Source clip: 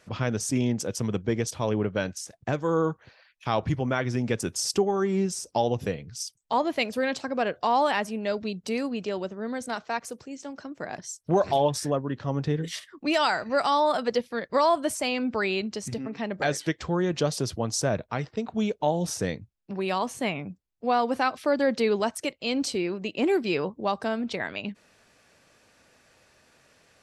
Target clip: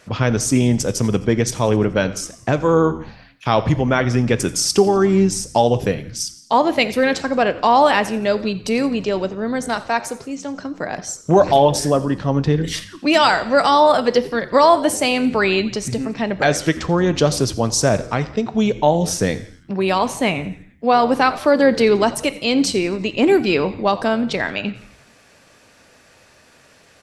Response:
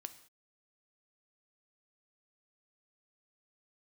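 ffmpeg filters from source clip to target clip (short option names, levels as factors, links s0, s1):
-filter_complex "[0:a]asplit=6[s0][s1][s2][s3][s4][s5];[s1]adelay=86,afreqshift=-87,volume=0.106[s6];[s2]adelay=172,afreqshift=-174,volume=0.0603[s7];[s3]adelay=258,afreqshift=-261,volume=0.0343[s8];[s4]adelay=344,afreqshift=-348,volume=0.0197[s9];[s5]adelay=430,afreqshift=-435,volume=0.0112[s10];[s0][s6][s7][s8][s9][s10]amix=inputs=6:normalize=0,asplit=2[s11][s12];[1:a]atrim=start_sample=2205[s13];[s12][s13]afir=irnorm=-1:irlink=0,volume=3.35[s14];[s11][s14]amix=inputs=2:normalize=0"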